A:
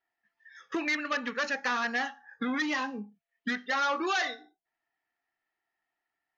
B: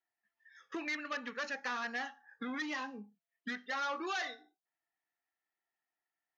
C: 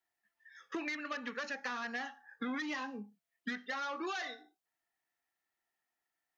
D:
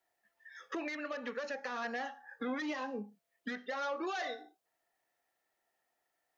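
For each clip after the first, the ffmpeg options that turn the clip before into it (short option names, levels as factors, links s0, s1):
-af "aeval=exprs='0.0794*(cos(1*acos(clip(val(0)/0.0794,-1,1)))-cos(1*PI/2))+0.000562*(cos(5*acos(clip(val(0)/0.0794,-1,1)))-cos(5*PI/2))':c=same,lowshelf=f=110:g=-7,volume=0.398"
-filter_complex "[0:a]acrossover=split=250[s0][s1];[s1]acompressor=threshold=0.0112:ratio=6[s2];[s0][s2]amix=inputs=2:normalize=0,volume=1.41"
-af "equalizer=f=560:t=o:w=0.99:g=11,alimiter=level_in=2.66:limit=0.0631:level=0:latency=1:release=319,volume=0.376,volume=1.5"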